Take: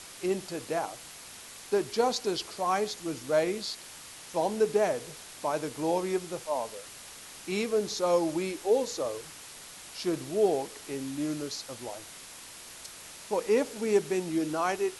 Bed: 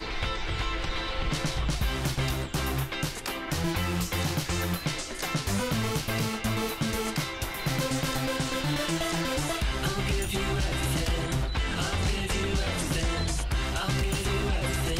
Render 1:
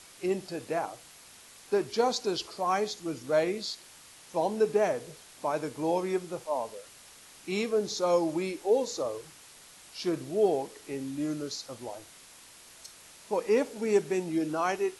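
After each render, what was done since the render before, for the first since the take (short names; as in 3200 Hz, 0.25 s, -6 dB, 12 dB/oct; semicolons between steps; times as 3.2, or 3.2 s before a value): noise print and reduce 6 dB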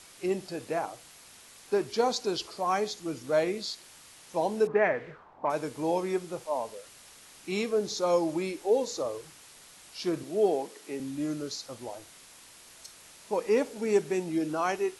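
4.67–5.5 envelope low-pass 690–2000 Hz up, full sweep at -30.5 dBFS; 10.23–11 HPF 170 Hz 24 dB/oct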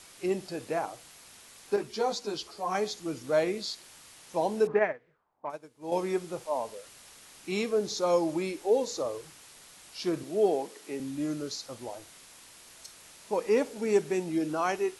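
1.76–2.75 ensemble effect; 4.79–5.92 upward expander 2.5:1, over -36 dBFS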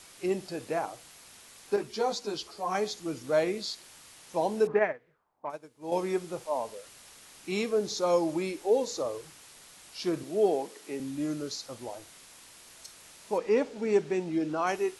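13.38–14.67 air absorption 78 m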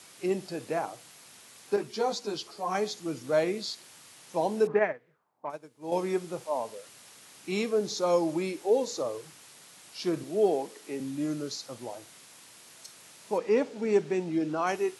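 HPF 110 Hz 24 dB/oct; low shelf 150 Hz +4 dB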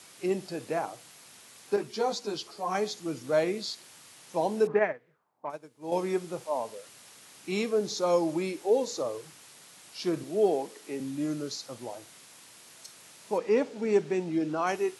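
nothing audible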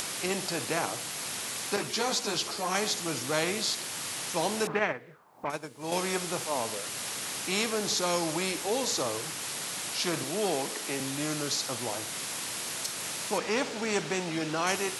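upward compressor, threshold -46 dBFS; spectral compressor 2:1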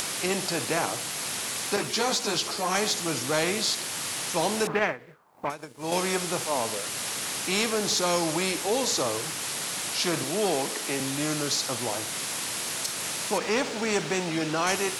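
sample leveller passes 1; ending taper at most 220 dB/s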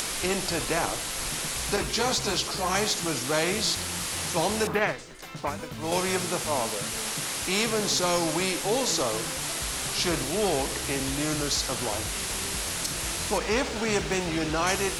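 add bed -10.5 dB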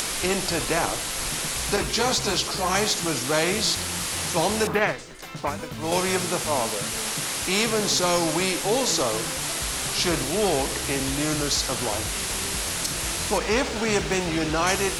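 gain +3 dB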